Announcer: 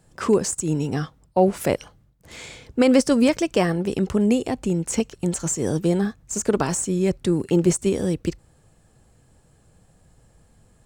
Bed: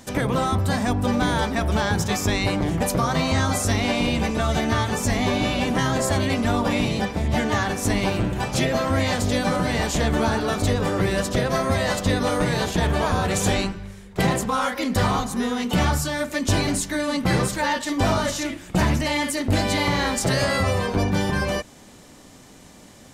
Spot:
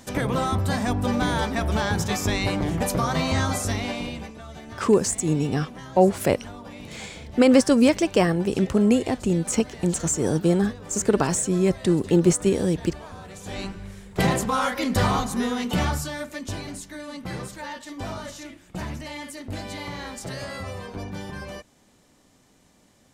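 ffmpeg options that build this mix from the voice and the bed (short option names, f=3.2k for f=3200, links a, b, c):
-filter_complex "[0:a]adelay=4600,volume=0.5dB[a];[1:a]volume=16dB,afade=t=out:st=3.42:d=0.94:silence=0.149624,afade=t=in:st=13.45:d=0.51:silence=0.125893,afade=t=out:st=15.38:d=1.19:silence=0.251189[b];[a][b]amix=inputs=2:normalize=0"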